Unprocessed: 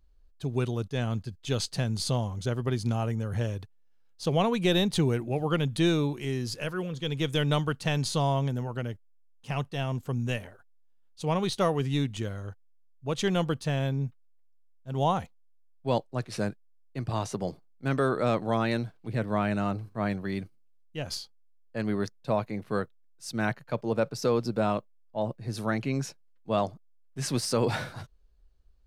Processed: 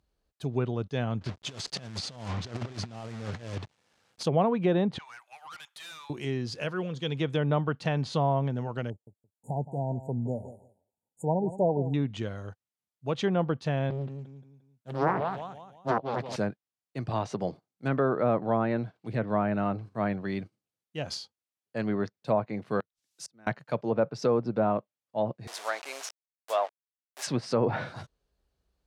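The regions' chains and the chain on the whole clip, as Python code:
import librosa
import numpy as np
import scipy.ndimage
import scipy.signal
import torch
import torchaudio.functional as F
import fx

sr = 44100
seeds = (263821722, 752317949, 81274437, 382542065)

y = fx.chain(x, sr, fx.block_float(bits=3),
    fx.over_compress(threshold_db=-34.0, ratio=-0.5),
    fx.lowpass(hz=7900.0, slope=12), at=(1.21, 4.23))
y = fx.chain(y, sr, fx.steep_highpass(hz=970.0, slope=36),
    fx.high_shelf(hz=4800.0, db=-5.5),
    fx.tube_stage(drive_db=42.0, bias=0.25), at=(4.98, 6.1))
y = fx.chain(y, sr, fx.brickwall_bandstop(low_hz=970.0, high_hz=6700.0),
    fx.echo_feedback(ms=169, feedback_pct=16, wet_db=-14), at=(8.9, 11.94))
y = fx.chain(y, sr, fx.highpass(hz=130.0, slope=12),
    fx.echo_feedback(ms=175, feedback_pct=38, wet_db=-7.0),
    fx.doppler_dist(depth_ms=0.91), at=(13.9, 16.36))
y = fx.chain(y, sr, fx.peak_eq(hz=5700.0, db=5.5, octaves=1.4),
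    fx.gate_flip(shuts_db=-28.0, range_db=-38),
    fx.band_squash(depth_pct=70), at=(22.8, 23.47))
y = fx.chain(y, sr, fx.delta_hold(step_db=-35.5),
    fx.highpass(hz=570.0, slope=24),
    fx.high_shelf(hz=5300.0, db=7.5), at=(25.47, 27.27))
y = fx.env_lowpass_down(y, sr, base_hz=1400.0, full_db=-22.0)
y = scipy.signal.sosfilt(scipy.signal.butter(2, 98.0, 'highpass', fs=sr, output='sos'), y)
y = fx.peak_eq(y, sr, hz=690.0, db=2.5, octaves=0.77)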